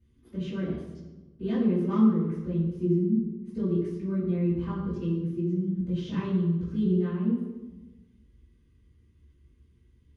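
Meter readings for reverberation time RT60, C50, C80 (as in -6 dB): 1.1 s, -0.5 dB, 1.5 dB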